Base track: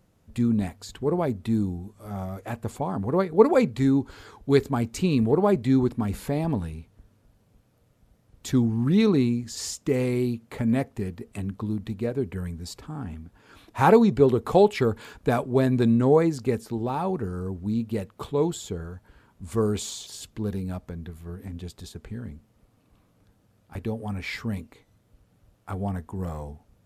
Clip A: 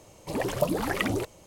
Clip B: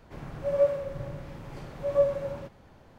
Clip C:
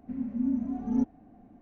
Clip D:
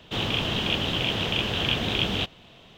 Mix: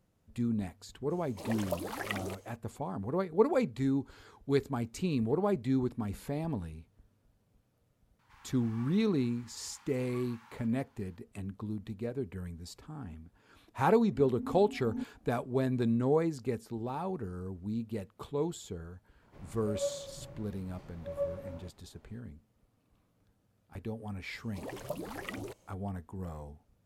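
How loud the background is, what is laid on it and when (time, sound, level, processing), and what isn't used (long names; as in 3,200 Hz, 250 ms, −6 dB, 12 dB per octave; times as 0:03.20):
base track −9 dB
0:01.10: mix in A −7.5 dB + low-shelf EQ 260 Hz −11.5 dB
0:08.19: mix in B −8 dB + Butterworth high-pass 820 Hz 96 dB per octave
0:14.00: mix in C −12 dB
0:19.22: mix in B −11.5 dB + notch filter 1,600 Hz, Q 22
0:24.28: mix in A −13 dB
not used: D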